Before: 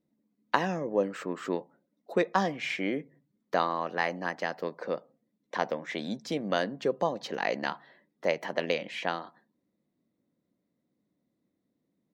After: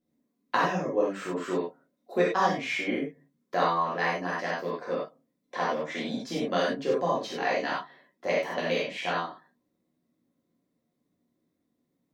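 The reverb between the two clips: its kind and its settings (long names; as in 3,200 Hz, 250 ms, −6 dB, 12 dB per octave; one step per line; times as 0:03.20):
reverb whose tail is shaped and stops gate 120 ms flat, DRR −7 dB
level −5 dB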